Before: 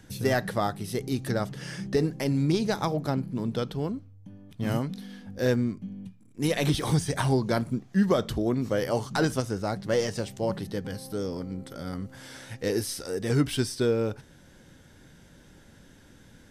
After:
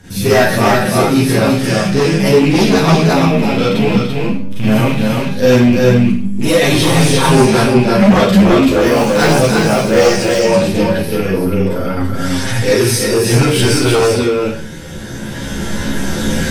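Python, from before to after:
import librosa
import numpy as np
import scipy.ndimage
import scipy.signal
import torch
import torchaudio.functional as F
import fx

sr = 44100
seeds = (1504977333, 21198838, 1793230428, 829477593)

p1 = fx.rattle_buzz(x, sr, strikes_db=-31.0, level_db=-29.0)
p2 = fx.recorder_agc(p1, sr, target_db=-22.5, rise_db_per_s=8.9, max_gain_db=30)
p3 = fx.band_shelf(p2, sr, hz=5800.0, db=-11.0, octaves=1.7, at=(10.88, 11.98))
p4 = p3 + fx.echo_single(p3, sr, ms=338, db=-3.5, dry=0)
p5 = fx.mod_noise(p4, sr, seeds[0], snr_db=28, at=(8.81, 10.36))
p6 = fx.rev_schroeder(p5, sr, rt60_s=0.46, comb_ms=33, drr_db=-8.5)
p7 = fx.fold_sine(p6, sr, drive_db=10, ceiling_db=0.0)
p8 = fx.chorus_voices(p7, sr, voices=2, hz=0.16, base_ms=11, depth_ms=3.6, mix_pct=45)
y = p8 * 10.0 ** (-2.5 / 20.0)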